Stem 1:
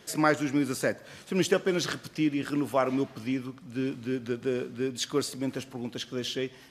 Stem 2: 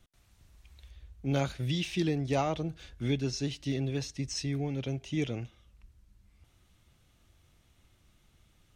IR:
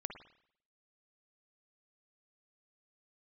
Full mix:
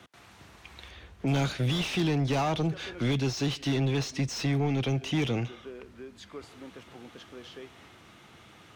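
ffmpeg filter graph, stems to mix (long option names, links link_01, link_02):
-filter_complex "[0:a]acompressor=threshold=-45dB:ratio=2,adelay=1200,volume=-18.5dB[link_01];[1:a]highpass=80,equalizer=frequency=580:width=5.4:gain=-5,volume=3dB[link_02];[link_01][link_02]amix=inputs=2:normalize=0,acrossover=split=180|3000[link_03][link_04][link_05];[link_04]acompressor=threshold=-46dB:ratio=2[link_06];[link_03][link_06][link_05]amix=inputs=3:normalize=0,asplit=2[link_07][link_08];[link_08]highpass=frequency=720:poles=1,volume=28dB,asoftclip=type=tanh:threshold=-16dB[link_09];[link_07][link_09]amix=inputs=2:normalize=0,lowpass=frequency=1100:poles=1,volume=-6dB"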